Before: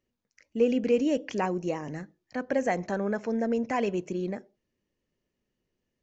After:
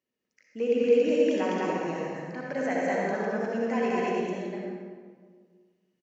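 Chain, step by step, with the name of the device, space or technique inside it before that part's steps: stadium PA (HPF 150 Hz 12 dB/oct; bell 2200 Hz +3.5 dB 2.4 oct; loudspeakers at several distances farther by 70 m 0 dB, 86 m -9 dB; reverb RT60 1.7 s, pre-delay 56 ms, DRR -2.5 dB); gain -7.5 dB

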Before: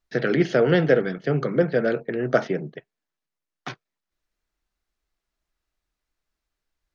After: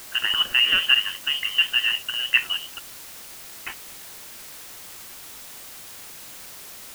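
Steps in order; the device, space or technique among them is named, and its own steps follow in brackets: scrambled radio voice (BPF 340–2800 Hz; inverted band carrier 3300 Hz; white noise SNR 14 dB); gain +1 dB

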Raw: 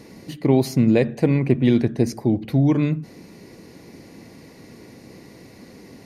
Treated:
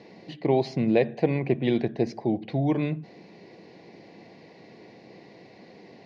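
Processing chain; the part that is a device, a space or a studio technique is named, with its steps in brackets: kitchen radio (speaker cabinet 180–4400 Hz, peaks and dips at 260 Hz -8 dB, 720 Hz +6 dB, 1300 Hz -9 dB); gain -2.5 dB

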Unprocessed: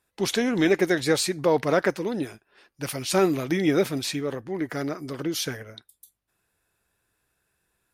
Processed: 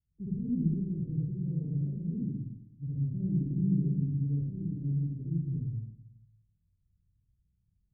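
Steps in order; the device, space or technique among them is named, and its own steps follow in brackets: club heard from the street (limiter -16 dBFS, peak gain reduction 7.5 dB; LPF 160 Hz 24 dB/oct; reverb RT60 0.75 s, pre-delay 52 ms, DRR -6.5 dB)

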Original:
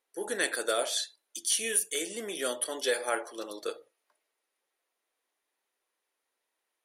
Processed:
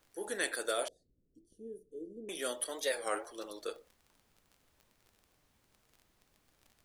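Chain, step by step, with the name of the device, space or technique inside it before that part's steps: warped LP (record warp 33 1/3 rpm, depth 160 cents; crackle 31/s -43 dBFS; pink noise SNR 32 dB); 0.88–2.29 inverse Chebyshev low-pass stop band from 870 Hz, stop band 40 dB; gain -5 dB

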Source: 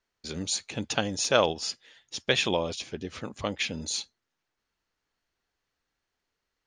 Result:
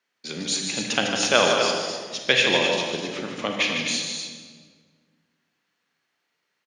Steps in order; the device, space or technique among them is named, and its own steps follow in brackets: stadium PA (HPF 150 Hz 24 dB/oct; bell 2300 Hz +6 dB 1.5 oct; loudspeakers at several distances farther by 52 m -7 dB, 87 m -8 dB; reverb RT60 1.6 s, pre-delay 29 ms, DRR 3 dB); gain +1.5 dB

